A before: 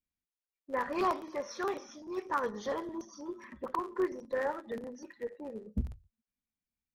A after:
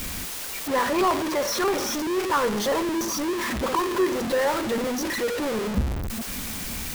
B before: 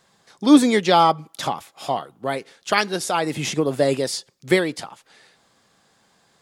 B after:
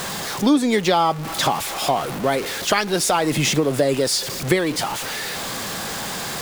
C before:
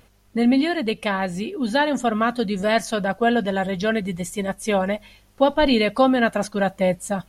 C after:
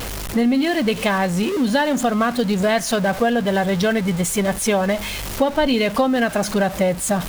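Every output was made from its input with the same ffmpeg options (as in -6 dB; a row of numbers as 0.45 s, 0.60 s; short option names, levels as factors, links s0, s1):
-af "aeval=exprs='val(0)+0.5*0.0398*sgn(val(0))':c=same,acompressor=threshold=0.0891:ratio=4,volume=1.88"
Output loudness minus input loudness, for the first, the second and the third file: +11.5 LU, 0.0 LU, +2.0 LU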